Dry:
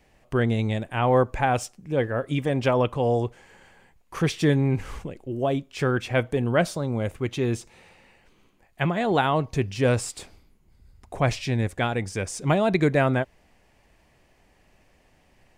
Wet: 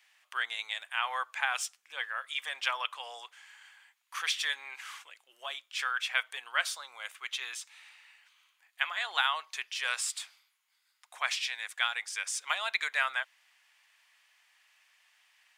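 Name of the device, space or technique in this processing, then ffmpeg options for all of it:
headphones lying on a table: -af "highpass=frequency=1200:width=0.5412,highpass=frequency=1200:width=1.3066,equalizer=frequency=3400:width_type=o:width=0.4:gain=5"

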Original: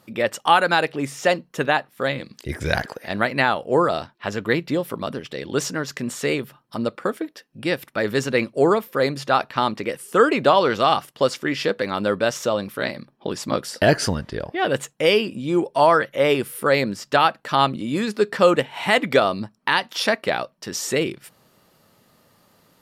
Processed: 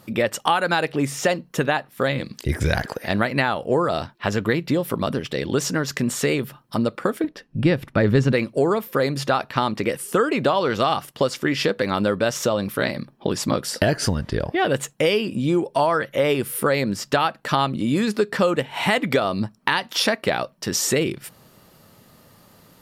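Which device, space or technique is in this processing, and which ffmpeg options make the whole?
ASMR close-microphone chain: -filter_complex "[0:a]lowshelf=frequency=170:gain=7,acompressor=threshold=-22dB:ratio=4,highshelf=frequency=9700:gain=4,asettb=1/sr,asplit=3[link_01][link_02][link_03];[link_01]atrim=end=7.244[link_04];[link_02]atrim=start=7.24:end=8.33,asetpts=PTS-STARTPTS,afade=type=in:duration=0.004:curve=qsin,afade=type=out:start_time=1.086:duration=0.004:curve=qsin,aemphasis=mode=reproduction:type=bsi[link_05];[link_03]atrim=start=8.326[link_06];[link_04][link_05]acrossfade=duration=0.004:curve1=hsin:curve2=qsin[link_07];[link_07][link_06]acrossfade=duration=0.004:curve1=qsin:curve2=hsin,volume=4.5dB"

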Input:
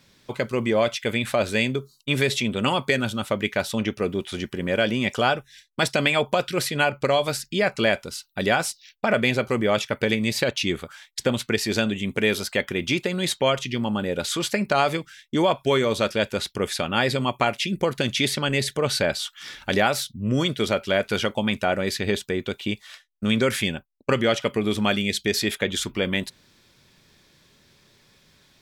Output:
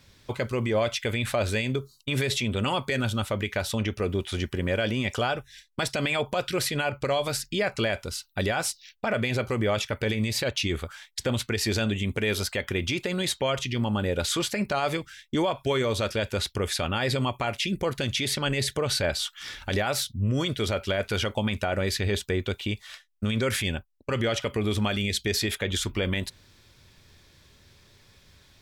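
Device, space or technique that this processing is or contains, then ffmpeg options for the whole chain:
car stereo with a boomy subwoofer: -af "lowshelf=frequency=120:width_type=q:width=1.5:gain=8,alimiter=limit=-16.5dB:level=0:latency=1:release=63"

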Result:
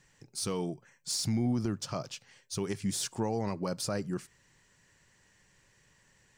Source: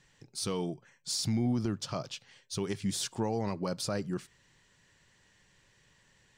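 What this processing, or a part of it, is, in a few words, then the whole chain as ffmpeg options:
exciter from parts: -filter_complex "[0:a]asplit=2[link_01][link_02];[link_02]highpass=frequency=3300:width=0.5412,highpass=frequency=3300:width=1.3066,asoftclip=type=tanh:threshold=-34dB,volume=-5dB[link_03];[link_01][link_03]amix=inputs=2:normalize=0"

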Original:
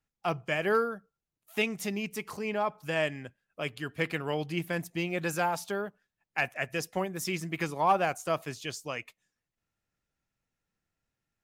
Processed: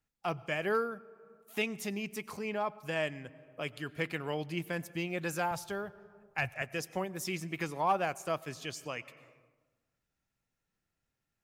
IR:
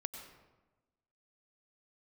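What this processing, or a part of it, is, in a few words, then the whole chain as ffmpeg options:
compressed reverb return: -filter_complex "[0:a]asettb=1/sr,asplit=3[link_01][link_02][link_03];[link_01]atrim=end=5.514[link_04];[link_02]atrim=start=5.51:end=6.62,asetpts=PTS-STARTPTS,afade=type=in:duration=0.004:curve=qsin,afade=type=out:start_time=1.106:duration=0.004:curve=qsin,lowshelf=frequency=150:width_type=q:width=1.5:gain=13.5[link_05];[link_03]atrim=start=6.616[link_06];[link_04][link_05]acrossfade=duration=0.004:curve1=hsin:curve2=qsin[link_07];[link_07][link_06]acrossfade=duration=0.004:curve1=qsin:curve2=hsin,asplit=2[link_08][link_09];[1:a]atrim=start_sample=2205[link_10];[link_09][link_10]afir=irnorm=-1:irlink=0,acompressor=threshold=-44dB:ratio=6,volume=-1dB[link_11];[link_08][link_11]amix=inputs=2:normalize=0,volume=-5dB"

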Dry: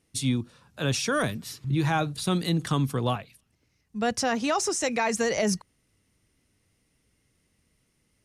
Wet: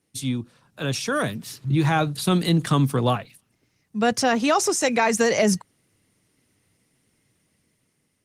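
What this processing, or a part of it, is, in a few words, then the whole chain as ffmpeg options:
video call: -af "highpass=frequency=100:width=0.5412,highpass=frequency=100:width=1.3066,dynaudnorm=framelen=580:gausssize=5:maxgain=6dB" -ar 48000 -c:a libopus -b:a 20k

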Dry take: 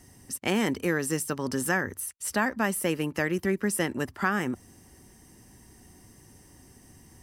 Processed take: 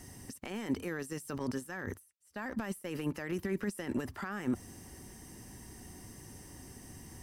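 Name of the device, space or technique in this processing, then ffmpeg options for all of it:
de-esser from a sidechain: -filter_complex "[0:a]asplit=2[link_01][link_02];[link_02]highpass=frequency=5100:poles=1,apad=whole_len=318624[link_03];[link_01][link_03]sidechaincompress=threshold=-53dB:ratio=5:attack=0.85:release=21,asettb=1/sr,asplit=3[link_04][link_05][link_06];[link_04]atrim=end=1.394[link_07];[link_05]atrim=start=1.39:end=3.02,asetpts=PTS-STARTPTS,afade=type=in:duration=0.004:curve=qsin,afade=type=out:start_time=1.626:duration=0.004:curve=qsin,agate=range=-33dB:threshold=-41dB:ratio=3:detection=peak[link_08];[link_06]atrim=start=3.016[link_09];[link_07][link_08]acrossfade=duration=0.004:curve1=hsin:curve2=qsin[link_10];[link_10][link_09]acrossfade=duration=0.004:curve1=qsin:curve2=hsin,volume=3.5dB"

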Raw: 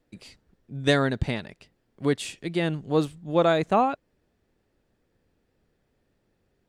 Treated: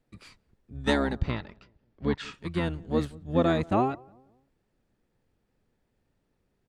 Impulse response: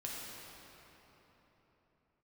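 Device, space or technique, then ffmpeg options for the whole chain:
octave pedal: -filter_complex "[0:a]asplit=3[link_01][link_02][link_03];[link_01]afade=type=out:start_time=1.19:duration=0.02[link_04];[link_02]lowpass=frequency=5600:width=0.5412,lowpass=frequency=5600:width=1.3066,afade=type=in:start_time=1.19:duration=0.02,afade=type=out:start_time=2.33:duration=0.02[link_05];[link_03]afade=type=in:start_time=2.33:duration=0.02[link_06];[link_04][link_05][link_06]amix=inputs=3:normalize=0,asplit=2[link_07][link_08];[link_08]adelay=180,lowpass=frequency=940:poles=1,volume=-23dB,asplit=2[link_09][link_10];[link_10]adelay=180,lowpass=frequency=940:poles=1,volume=0.44,asplit=2[link_11][link_12];[link_12]adelay=180,lowpass=frequency=940:poles=1,volume=0.44[link_13];[link_07][link_09][link_11][link_13]amix=inputs=4:normalize=0,asplit=2[link_14][link_15];[link_15]asetrate=22050,aresample=44100,atempo=2,volume=-1dB[link_16];[link_14][link_16]amix=inputs=2:normalize=0,volume=-5.5dB"

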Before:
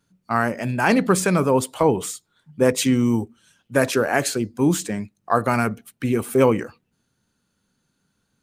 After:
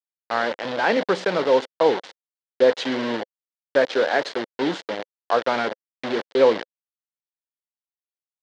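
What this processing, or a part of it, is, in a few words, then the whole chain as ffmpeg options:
hand-held game console: -af "acrusher=bits=3:mix=0:aa=0.000001,highpass=400,equalizer=frequency=520:width_type=q:width=4:gain=5,equalizer=frequency=1200:width_type=q:width=4:gain=-6,equalizer=frequency=2500:width_type=q:width=4:gain=-7,lowpass=frequency=4100:width=0.5412,lowpass=frequency=4100:width=1.3066"

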